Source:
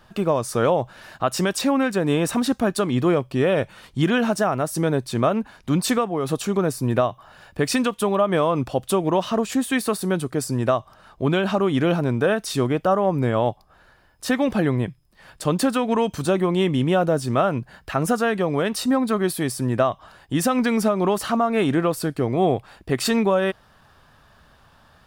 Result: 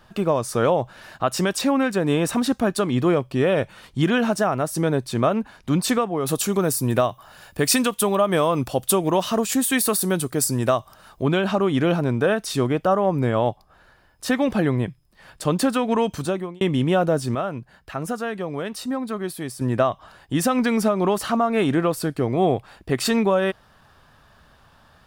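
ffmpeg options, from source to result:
-filter_complex "[0:a]asettb=1/sr,asplit=3[s0][s1][s2];[s0]atrim=end=6.264[s3];[s1]atrim=start=6.26:end=11.23,asetpts=PTS-STARTPTS,afade=t=in:d=0.004:c=qsin,afade=t=out:st=4.966:d=0.004:c=qsin,aemphasis=mode=production:type=50kf[s4];[s2]atrim=start=11.226[s5];[s3][s4]acrossfade=d=0.004:c1=hsin:c2=qsin[s6];[s6][s5]acrossfade=d=0.004:c1=qsin:c2=hsin,asplit=4[s7][s8][s9][s10];[s7]atrim=end=16.61,asetpts=PTS-STARTPTS,afade=t=out:st=16.14:d=0.47[s11];[s8]atrim=start=16.61:end=17.352,asetpts=PTS-STARTPTS,afade=t=in:d=0.004:c=hsin[s12];[s9]atrim=start=17.348:end=19.612,asetpts=PTS-STARTPTS,volume=0.473[s13];[s10]atrim=start=19.608[s14];[s11][s12]concat=n=2:v=0:a=1[s15];[s15][s13]acrossfade=d=0.004:c1=hsin:c2=hsin[s16];[s16][s14]acrossfade=d=0.004:c1=hsin:c2=hsin"

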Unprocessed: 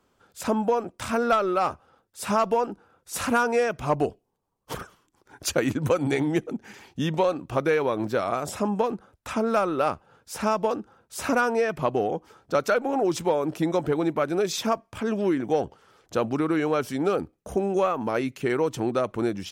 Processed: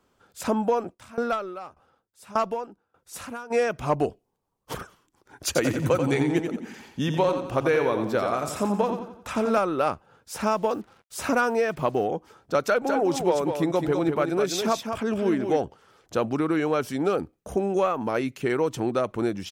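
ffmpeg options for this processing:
-filter_complex "[0:a]asplit=3[s0][s1][s2];[s0]afade=t=out:st=0.93:d=0.02[s3];[s1]aeval=exprs='val(0)*pow(10,-20*if(lt(mod(1.7*n/s,1),2*abs(1.7)/1000),1-mod(1.7*n/s,1)/(2*abs(1.7)/1000),(mod(1.7*n/s,1)-2*abs(1.7)/1000)/(1-2*abs(1.7)/1000))/20)':c=same,afade=t=in:st=0.93:d=0.02,afade=t=out:st=3.5:d=0.02[s4];[s2]afade=t=in:st=3.5:d=0.02[s5];[s3][s4][s5]amix=inputs=3:normalize=0,asettb=1/sr,asplit=3[s6][s7][s8];[s6]atrim=end=5.464[s9];[s7]atrim=start=5.46:end=9.58,asetpts=PTS-STARTPTS,afade=t=in:d=0.004:c=qsin,afade=t=out:st=4.116:d=0.004:c=qsin,aecho=1:1:88|176|264|352|440:0.447|0.188|0.0788|0.0331|0.0139,atrim=end_sample=181692[s10];[s8]atrim=start=9.576[s11];[s9][s10]acrossfade=d=0.004:c1=hsin:c2=qsin[s12];[s12][s11]acrossfade=d=0.004:c1=qsin:c2=hsin,asettb=1/sr,asplit=3[s13][s14][s15];[s13]atrim=end=10.334[s16];[s14]atrim=start=10.33:end=12.05,asetpts=PTS-STARTPTS,afade=t=in:d=0.004:c=qsin,afade=t=out:st=1.716:d=0.004:c=qsin,acrusher=bits=8:mix=0:aa=0.5[s17];[s15]atrim=start=12.046[s18];[s16][s17]acrossfade=d=0.004:c1=hsin:c2=qsin[s19];[s19][s18]acrossfade=d=0.004:c1=qsin:c2=hsin,asplit=3[s20][s21][s22];[s20]afade=t=out:st=12.81:d=0.02[s23];[s21]aecho=1:1:204:0.473,afade=t=in:st=12.81:d=0.02,afade=t=out:st=15.56:d=0.02[s24];[s22]afade=t=in:st=15.56:d=0.02[s25];[s23][s24][s25]amix=inputs=3:normalize=0"

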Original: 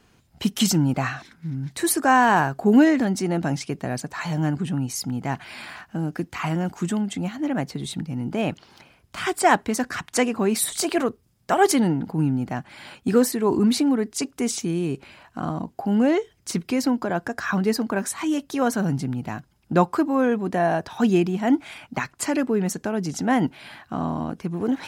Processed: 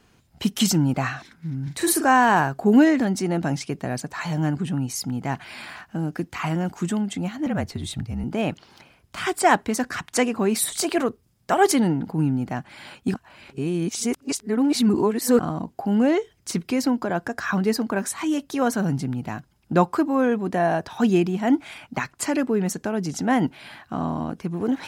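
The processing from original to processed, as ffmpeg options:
-filter_complex "[0:a]asettb=1/sr,asplit=3[s0][s1][s2];[s0]atrim=end=1.634[s3];[s1]atrim=start=1.63:end=2.08,asetpts=PTS-STARTPTS,afade=t=in:d=0.004:c=qsin,afade=t=out:st=0.446:d=0.004:c=qsin,asplit=2[s4][s5];[s5]adelay=43,volume=0.562[s6];[s4][s6]amix=inputs=2:normalize=0,atrim=end_sample=19845[s7];[s2]atrim=start=2.076[s8];[s3][s7]acrossfade=d=0.004:c1=hsin:c2=qsin[s9];[s9][s8]acrossfade=d=0.004:c1=qsin:c2=hsin,asettb=1/sr,asplit=3[s10][s11][s12];[s10]atrim=end=7.464[s13];[s11]atrim=start=7.46:end=8.24,asetpts=PTS-STARTPTS,afade=t=in:d=0.004:c=qsin,afade=t=out:st=0.776:d=0.004:c=qsin,afreqshift=-48[s14];[s12]atrim=start=8.236[s15];[s13][s14]acrossfade=d=0.004:c1=hsin:c2=qsin[s16];[s16][s15]acrossfade=d=0.004:c1=qsin:c2=hsin,asplit=3[s17][s18][s19];[s17]atrim=end=13.142[s20];[s18]atrim=start=13.138:end=15.392,asetpts=PTS-STARTPTS,areverse[s21];[s19]atrim=start=15.388[s22];[s20][s21]acrossfade=d=0.004:c1=hsin:c2=hsin[s23];[s23][s22]acrossfade=d=0.004:c1=hsin:c2=hsin"

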